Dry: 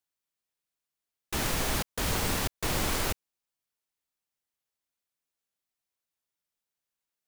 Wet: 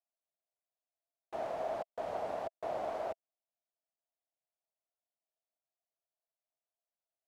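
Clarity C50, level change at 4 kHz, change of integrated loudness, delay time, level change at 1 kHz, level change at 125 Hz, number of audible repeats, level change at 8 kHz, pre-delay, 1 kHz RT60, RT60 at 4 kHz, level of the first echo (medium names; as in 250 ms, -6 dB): no reverb, -25.0 dB, -9.5 dB, no echo, -3.5 dB, -25.0 dB, no echo, under -30 dB, no reverb, no reverb, no reverb, no echo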